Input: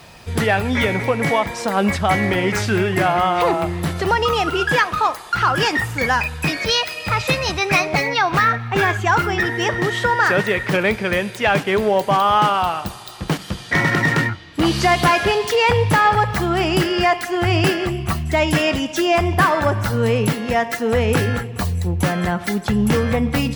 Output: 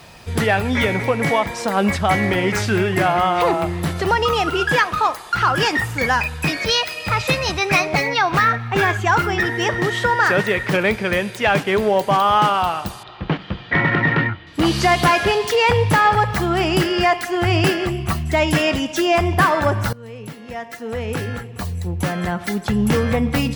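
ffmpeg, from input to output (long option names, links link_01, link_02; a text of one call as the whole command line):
ffmpeg -i in.wav -filter_complex "[0:a]asettb=1/sr,asplit=3[link_01][link_02][link_03];[link_01]atrim=end=13.034[link_04];[link_02]atrim=start=13.03:end=14.47,asetpts=PTS-STARTPTS,afade=type=in:duration=0.004:curve=qsin,afade=type=out:start_time=1.436:duration=0.004:curve=qsin,lowpass=frequency=3300:width=0.5412,lowpass=frequency=3300:width=1.3066[link_05];[link_03]atrim=start=14.466[link_06];[link_04][link_05]acrossfade=duration=0.004:curve1=hsin:curve2=qsin[link_07];[link_07][link_06]acrossfade=duration=0.004:curve1=qsin:curve2=hsin,asplit=2[link_08][link_09];[link_08]atrim=end=19.93,asetpts=PTS-STARTPTS,afade=type=out:start_time=19.926:duration=0.004:curve=hsin:silence=0.0749894[link_10];[link_09]atrim=start=19.93,asetpts=PTS-STARTPTS,afade=type=in:duration=3.12:silence=0.0749894[link_11];[link_10][link_11]concat=n=2:v=0:a=1" out.wav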